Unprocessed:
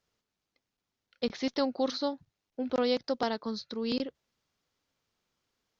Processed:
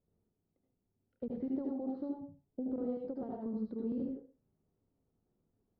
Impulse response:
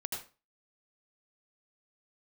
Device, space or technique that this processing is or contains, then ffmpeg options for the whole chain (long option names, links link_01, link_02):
television next door: -filter_complex "[0:a]acompressor=threshold=-40dB:ratio=4,lowpass=380[link_01];[1:a]atrim=start_sample=2205[link_02];[link_01][link_02]afir=irnorm=-1:irlink=0,volume=7dB"